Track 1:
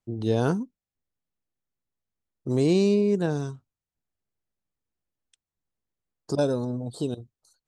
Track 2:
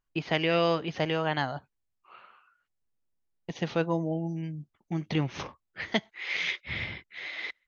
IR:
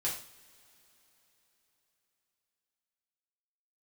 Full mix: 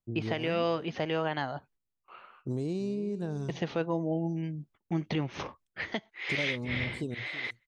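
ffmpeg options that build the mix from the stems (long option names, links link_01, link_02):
-filter_complex "[0:a]acompressor=threshold=-24dB:ratio=6,volume=-10dB,asplit=2[link_01][link_02];[link_02]volume=-16dB[link_03];[1:a]agate=range=-19dB:threshold=-59dB:ratio=16:detection=peak,bass=frequency=250:gain=-8,treble=frequency=4000:gain=-3,volume=0.5dB[link_04];[link_03]aecho=0:1:328:1[link_05];[link_01][link_04][link_05]amix=inputs=3:normalize=0,lowshelf=frequency=360:gain=7.5,alimiter=limit=-19dB:level=0:latency=1:release=342"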